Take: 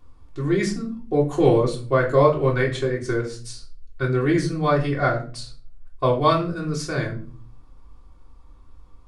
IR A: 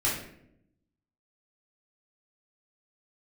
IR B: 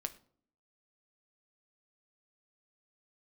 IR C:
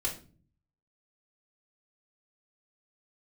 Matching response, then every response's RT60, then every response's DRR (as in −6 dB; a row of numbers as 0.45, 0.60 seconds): C; 0.75, 0.55, 0.40 seconds; −7.5, 7.5, −4.0 decibels